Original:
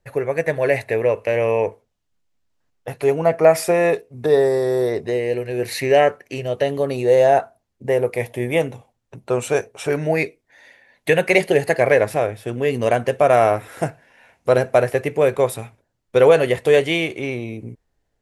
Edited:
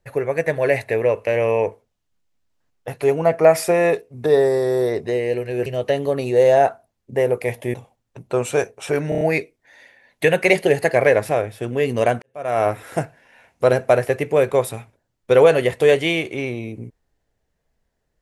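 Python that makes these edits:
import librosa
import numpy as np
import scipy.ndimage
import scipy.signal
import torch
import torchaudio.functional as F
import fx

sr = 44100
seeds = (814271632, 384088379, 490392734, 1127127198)

y = fx.edit(x, sr, fx.cut(start_s=5.66, length_s=0.72),
    fx.cut(start_s=8.46, length_s=0.25),
    fx.stutter(start_s=10.06, slice_s=0.03, count=5),
    fx.fade_in_span(start_s=13.07, length_s=0.46, curve='qua'), tone=tone)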